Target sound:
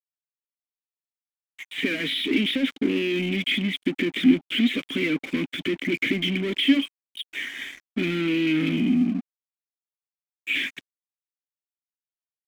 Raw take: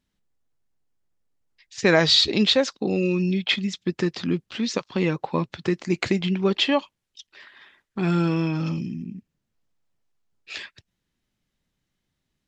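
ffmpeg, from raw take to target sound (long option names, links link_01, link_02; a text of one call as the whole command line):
ffmpeg -i in.wav -filter_complex "[0:a]acompressor=threshold=-22dB:ratio=6,aresample=8000,aresample=44100,asplit=2[link_01][link_02];[link_02]highpass=frequency=720:poles=1,volume=35dB,asoftclip=type=tanh:threshold=-9dB[link_03];[link_01][link_03]amix=inputs=2:normalize=0,lowpass=frequency=2600:poles=1,volume=-6dB,asplit=3[link_04][link_05][link_06];[link_04]bandpass=frequency=270:width_type=q:width=8,volume=0dB[link_07];[link_05]bandpass=frequency=2290:width_type=q:width=8,volume=-6dB[link_08];[link_06]bandpass=frequency=3010:width_type=q:width=8,volume=-9dB[link_09];[link_07][link_08][link_09]amix=inputs=3:normalize=0,aeval=exprs='sgn(val(0))*max(abs(val(0))-0.00316,0)':channel_layout=same,volume=7dB" out.wav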